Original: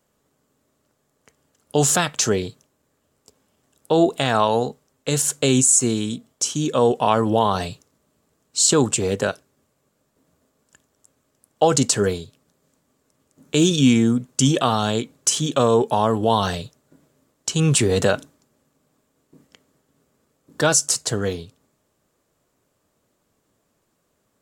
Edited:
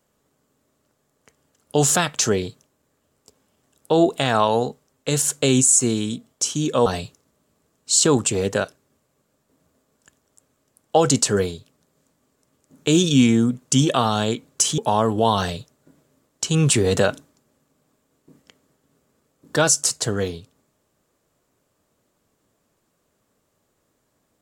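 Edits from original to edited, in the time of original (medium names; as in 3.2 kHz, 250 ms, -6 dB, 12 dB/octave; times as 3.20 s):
6.86–7.53 s: delete
15.45–15.83 s: delete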